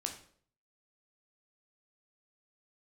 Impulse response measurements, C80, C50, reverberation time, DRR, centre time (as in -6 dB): 12.5 dB, 9.0 dB, 0.55 s, 3.0 dB, 17 ms